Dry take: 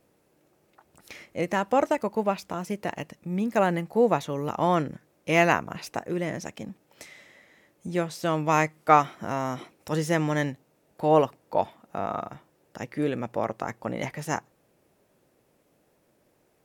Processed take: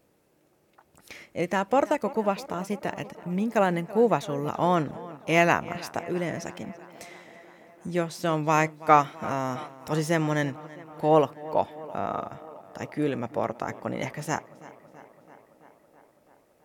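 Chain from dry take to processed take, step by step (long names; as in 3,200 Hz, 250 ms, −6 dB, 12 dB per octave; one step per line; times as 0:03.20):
tape delay 331 ms, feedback 77%, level −18 dB, low-pass 3,800 Hz
tape wow and flutter 15 cents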